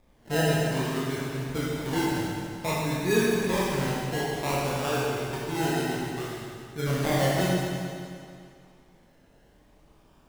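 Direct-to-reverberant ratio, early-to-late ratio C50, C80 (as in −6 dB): −7.0 dB, −3.0 dB, −0.5 dB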